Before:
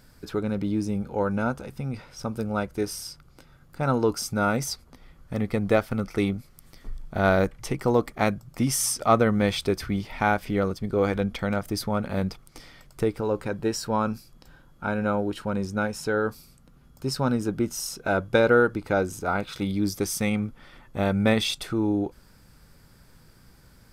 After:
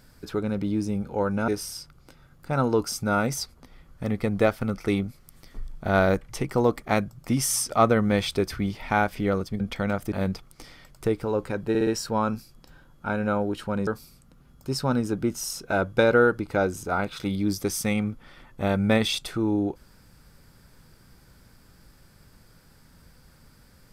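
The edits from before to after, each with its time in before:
1.48–2.78 s: delete
10.90–11.23 s: delete
11.75–12.08 s: delete
13.65 s: stutter 0.06 s, 4 plays
15.65–16.23 s: delete

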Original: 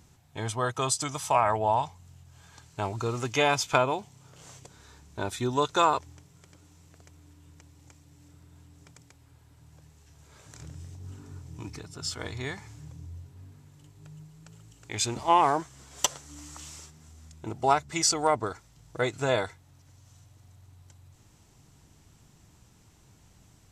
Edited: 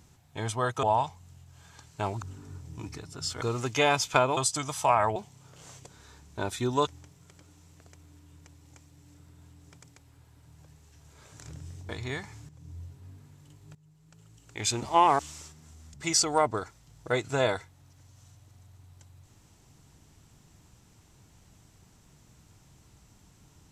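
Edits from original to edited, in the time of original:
0.83–1.62 s: move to 3.96 s
5.67–6.01 s: delete
11.03–12.23 s: move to 3.01 s
12.83–13.11 s: fade in, from -13.5 dB
14.09–14.98 s: fade in, from -18.5 dB
15.53–16.57 s: delete
17.32–17.83 s: delete

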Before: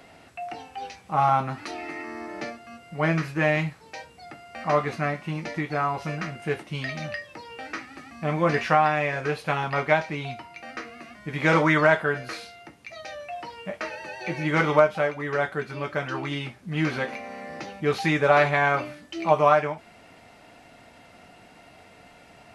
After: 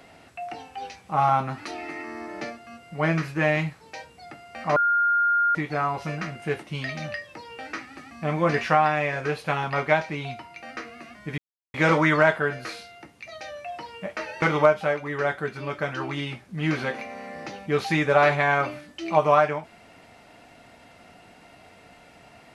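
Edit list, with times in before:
4.76–5.55 s: bleep 1.41 kHz -18 dBFS
11.38 s: insert silence 0.36 s
14.06–14.56 s: delete

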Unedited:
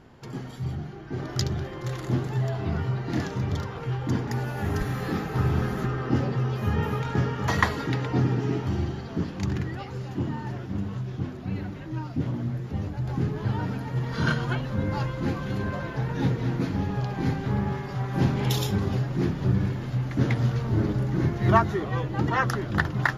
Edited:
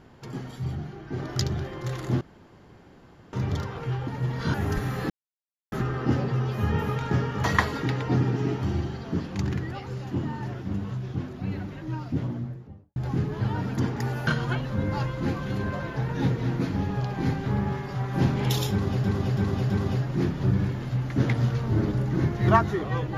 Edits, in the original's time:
2.21–3.33 s: room tone
4.08–4.58 s: swap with 13.81–14.27 s
5.14–5.76 s: mute
12.15–13.00 s: studio fade out
18.71–19.04 s: loop, 4 plays

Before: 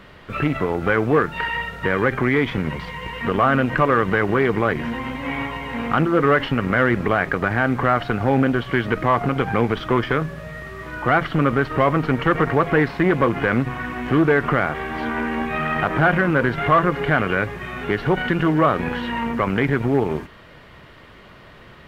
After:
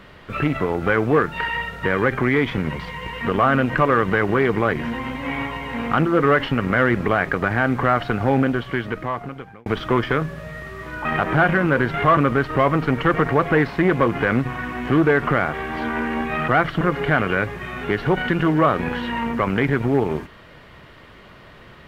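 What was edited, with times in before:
8.30–9.66 s: fade out
11.05–11.38 s: swap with 15.69–16.81 s

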